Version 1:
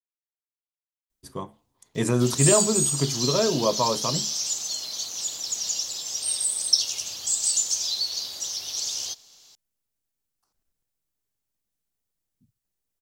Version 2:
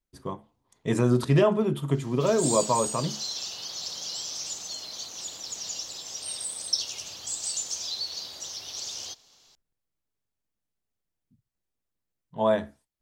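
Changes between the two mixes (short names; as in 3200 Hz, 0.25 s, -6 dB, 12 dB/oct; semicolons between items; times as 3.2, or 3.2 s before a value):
speech: entry -1.10 s; master: add high shelf 4400 Hz -11 dB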